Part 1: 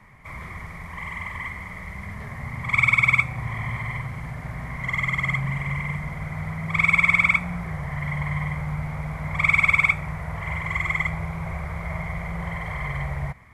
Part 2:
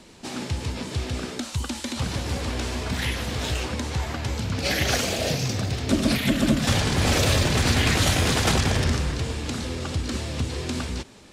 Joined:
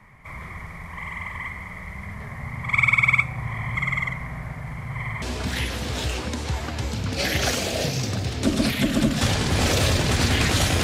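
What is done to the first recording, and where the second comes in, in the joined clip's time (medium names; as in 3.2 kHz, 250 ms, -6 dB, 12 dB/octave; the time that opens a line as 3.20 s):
part 1
3.75–5.22 s: reverse
5.22 s: go over to part 2 from 2.68 s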